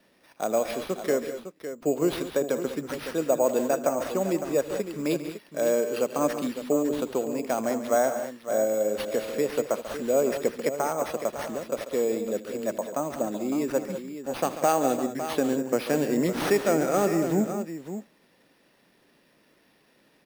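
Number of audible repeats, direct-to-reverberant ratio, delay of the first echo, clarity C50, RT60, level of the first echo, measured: 4, none, 79 ms, none, none, -19.5 dB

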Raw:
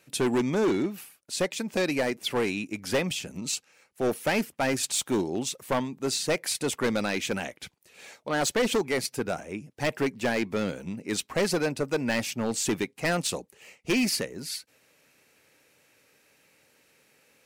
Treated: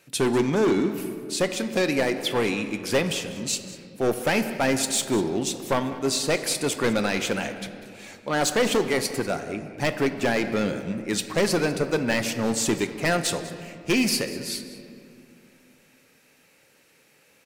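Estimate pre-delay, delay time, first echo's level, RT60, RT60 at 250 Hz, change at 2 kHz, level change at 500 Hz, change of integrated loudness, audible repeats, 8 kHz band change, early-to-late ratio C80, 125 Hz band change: 6 ms, 0.195 s, -17.5 dB, 2.5 s, 3.2 s, +3.5 dB, +3.5 dB, +3.5 dB, 1, +3.0 dB, 10.0 dB, +4.0 dB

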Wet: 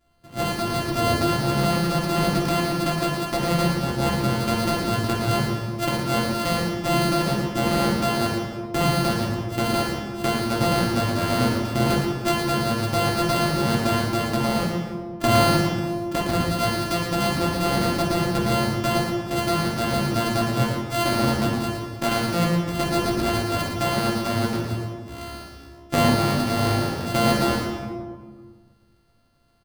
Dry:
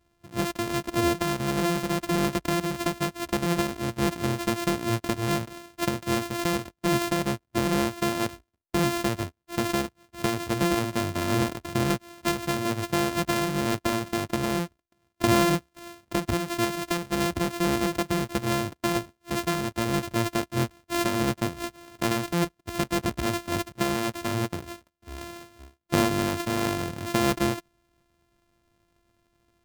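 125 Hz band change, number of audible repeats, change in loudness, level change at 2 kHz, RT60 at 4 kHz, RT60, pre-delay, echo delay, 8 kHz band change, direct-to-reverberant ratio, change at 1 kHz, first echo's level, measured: +7.0 dB, 1, +4.5 dB, +3.5 dB, 0.95 s, 1.6 s, 3 ms, 0.113 s, +2.0 dB, -5.5 dB, +5.5 dB, -5.0 dB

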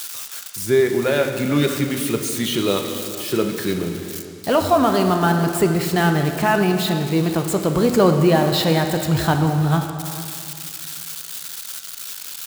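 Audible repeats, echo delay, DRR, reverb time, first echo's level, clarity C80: 1, 0.44 s, 4.5 dB, 2.3 s, -16.5 dB, 7.0 dB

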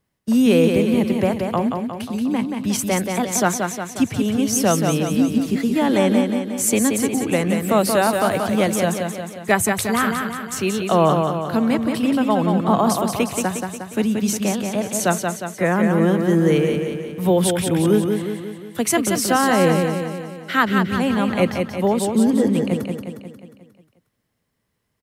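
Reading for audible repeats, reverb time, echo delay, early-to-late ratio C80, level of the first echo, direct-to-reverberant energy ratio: 6, none, 0.179 s, none, -5.0 dB, none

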